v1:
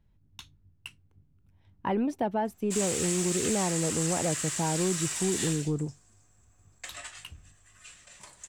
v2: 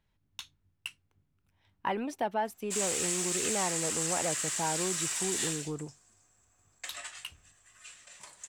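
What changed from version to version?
speech: add tilt shelf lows -4 dB, about 680 Hz; master: add bass shelf 340 Hz -8 dB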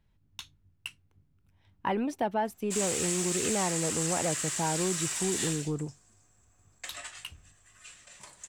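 master: add bass shelf 340 Hz +8 dB

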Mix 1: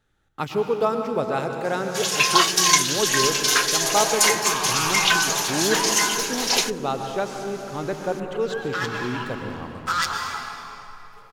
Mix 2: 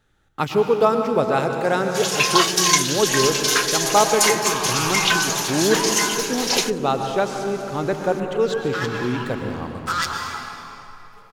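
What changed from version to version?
speech +5.0 dB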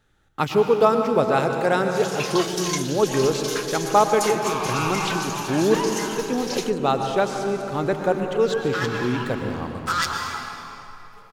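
first sound -11.0 dB

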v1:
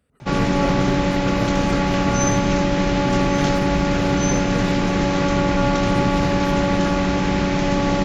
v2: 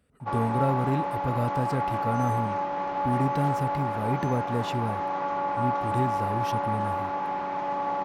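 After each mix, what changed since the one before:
background: add band-pass filter 900 Hz, Q 3.3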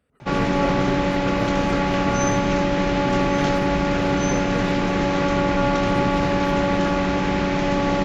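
background: remove band-pass filter 900 Hz, Q 3.3; master: add tone controls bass -4 dB, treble -6 dB

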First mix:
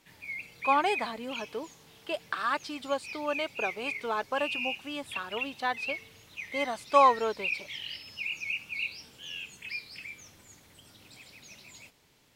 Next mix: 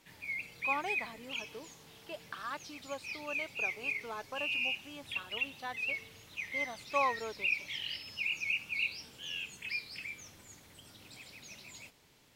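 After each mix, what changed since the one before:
speech -11.0 dB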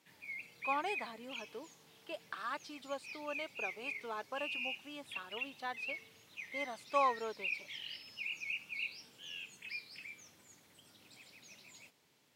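background -6.5 dB; master: add high-pass 140 Hz 12 dB/octave

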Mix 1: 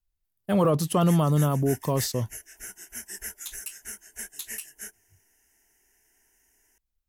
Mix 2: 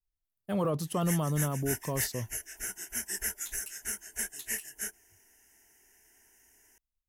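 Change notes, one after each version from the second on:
speech -8.0 dB; background +3.5 dB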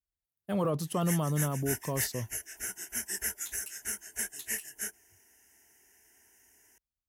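master: add high-pass 53 Hz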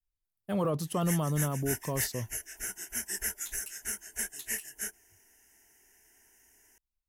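master: remove high-pass 53 Hz

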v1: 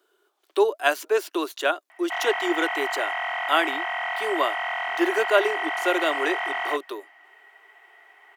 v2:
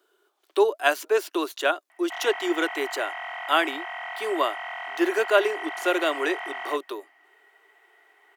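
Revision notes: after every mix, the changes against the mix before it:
background -6.5 dB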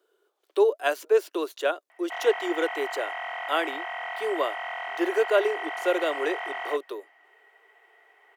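speech -6.0 dB; master: add peaking EQ 490 Hz +11.5 dB 0.47 oct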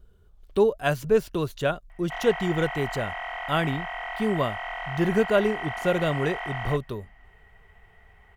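master: remove steep high-pass 310 Hz 72 dB/octave

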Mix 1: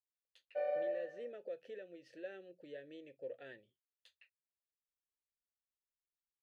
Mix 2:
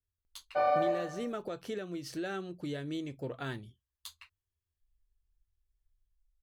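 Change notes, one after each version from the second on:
master: remove vowel filter e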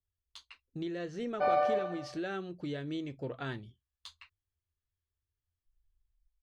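background: entry +0.85 s; master: add low-pass 5.1 kHz 12 dB/octave

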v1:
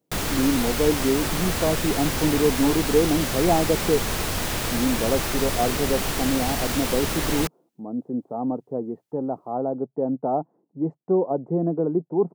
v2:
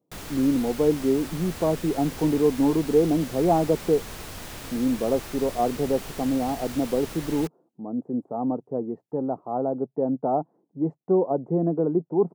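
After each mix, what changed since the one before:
background -12.0 dB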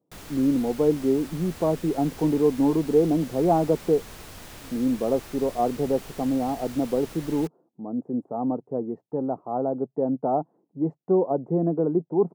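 background -4.5 dB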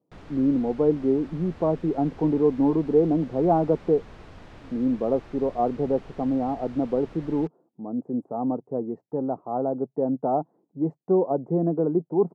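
background: add tape spacing loss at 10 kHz 29 dB

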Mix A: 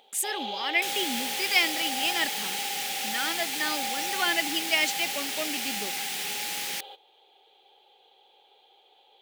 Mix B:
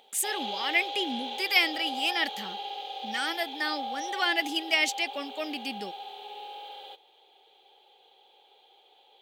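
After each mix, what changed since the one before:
second sound: muted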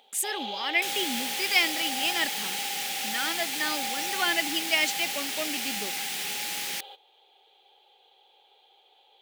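first sound: add bass shelf 370 Hz -7.5 dB; second sound: unmuted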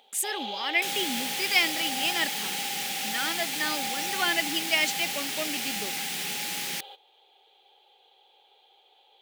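second sound: add bass shelf 220 Hz +10.5 dB

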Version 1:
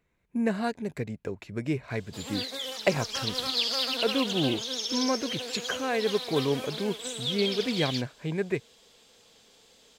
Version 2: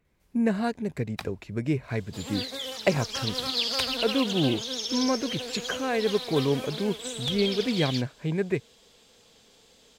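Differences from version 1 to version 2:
first sound: unmuted; master: add bass shelf 290 Hz +5 dB

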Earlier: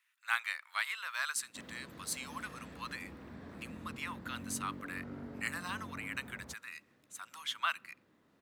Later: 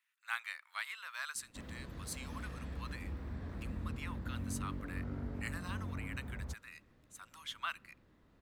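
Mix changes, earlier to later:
speech -6.0 dB; background: remove high-pass 170 Hz 12 dB/octave

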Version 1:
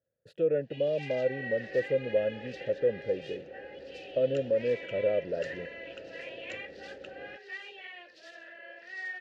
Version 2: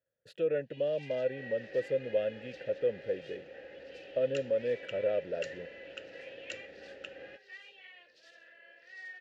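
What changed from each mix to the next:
first sound -11.5 dB; master: add tilt shelf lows -6 dB, about 930 Hz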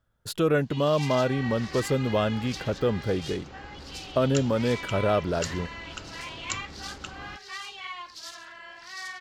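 speech: add peaking EQ 130 Hz -8 dB 1.4 oct; second sound -8.0 dB; master: remove vowel filter e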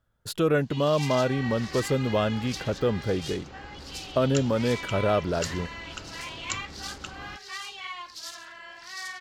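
first sound: add treble shelf 7 kHz +6.5 dB

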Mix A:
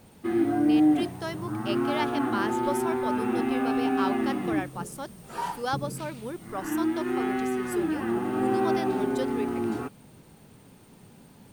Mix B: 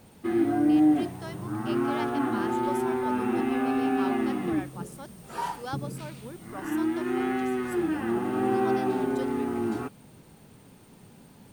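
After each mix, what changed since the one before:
speech -7.0 dB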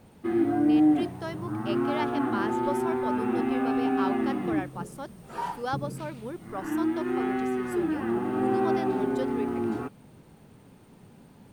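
speech +6.0 dB; master: add treble shelf 3.1 kHz -7.5 dB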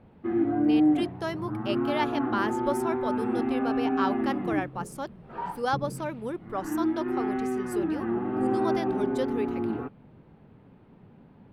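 speech +4.0 dB; background: add distance through air 420 m

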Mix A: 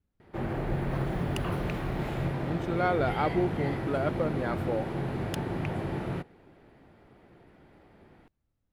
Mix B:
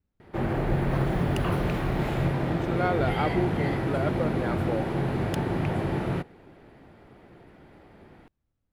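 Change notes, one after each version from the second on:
background +5.0 dB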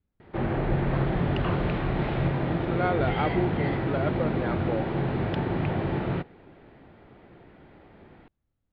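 master: add steep low-pass 4.1 kHz 36 dB/octave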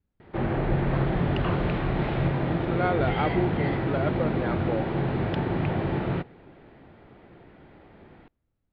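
reverb: on

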